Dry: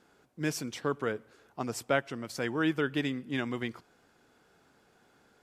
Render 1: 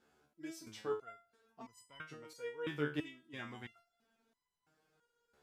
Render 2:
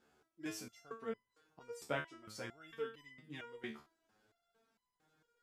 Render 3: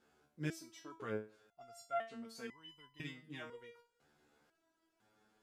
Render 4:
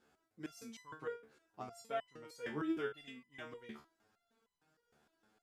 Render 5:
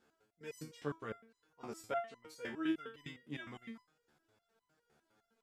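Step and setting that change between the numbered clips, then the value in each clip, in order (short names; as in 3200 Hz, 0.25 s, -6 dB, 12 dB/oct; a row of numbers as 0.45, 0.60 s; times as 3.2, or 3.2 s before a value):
stepped resonator, rate: 3, 4.4, 2, 6.5, 9.8 Hz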